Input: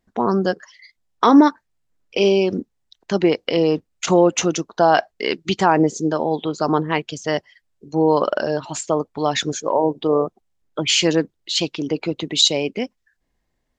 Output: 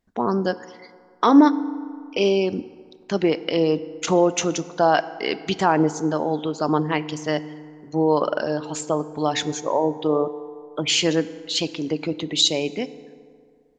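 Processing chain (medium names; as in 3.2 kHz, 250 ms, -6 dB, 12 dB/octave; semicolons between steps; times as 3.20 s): FDN reverb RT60 2.2 s, low-frequency decay 0.9×, high-frequency decay 0.5×, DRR 14 dB; trim -3 dB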